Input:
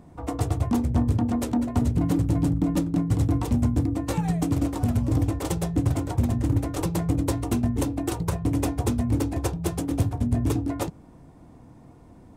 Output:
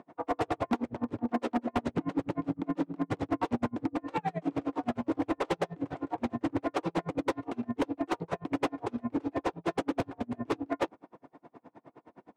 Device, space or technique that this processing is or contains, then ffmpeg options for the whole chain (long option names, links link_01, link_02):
helicopter radio: -af "highpass=400,lowpass=2500,aeval=exprs='val(0)*pow(10,-36*(0.5-0.5*cos(2*PI*9.6*n/s))/20)':channel_layout=same,asoftclip=type=hard:threshold=-31.5dB,volume=9dB"